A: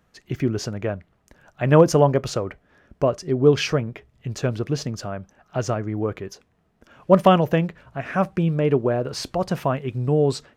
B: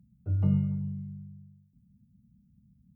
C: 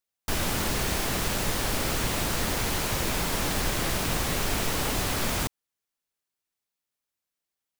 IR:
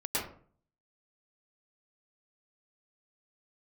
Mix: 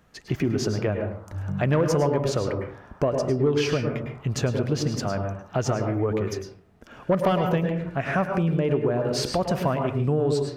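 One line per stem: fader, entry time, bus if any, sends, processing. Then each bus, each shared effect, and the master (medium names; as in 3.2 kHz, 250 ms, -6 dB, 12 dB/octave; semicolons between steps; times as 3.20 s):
+2.5 dB, 0.00 s, send -10 dB, saturation -7.5 dBFS, distortion -17 dB
-4.5 dB, 1.05 s, no send, none
-12.0 dB, 0.00 s, no send, elliptic band-pass 600–1400 Hz; detune thickener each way 53 cents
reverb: on, RT60 0.50 s, pre-delay 99 ms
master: compression 3:1, threshold -22 dBFS, peak gain reduction 11.5 dB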